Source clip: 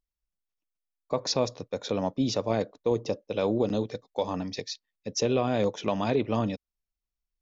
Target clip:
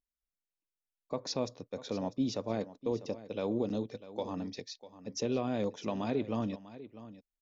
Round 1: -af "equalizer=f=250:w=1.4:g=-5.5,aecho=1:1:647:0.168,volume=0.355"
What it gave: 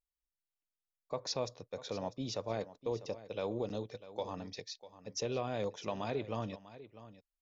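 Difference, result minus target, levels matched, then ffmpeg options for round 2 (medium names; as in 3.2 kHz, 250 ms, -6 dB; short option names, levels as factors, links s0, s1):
250 Hz band -5.0 dB
-af "equalizer=f=250:w=1.4:g=5,aecho=1:1:647:0.168,volume=0.355"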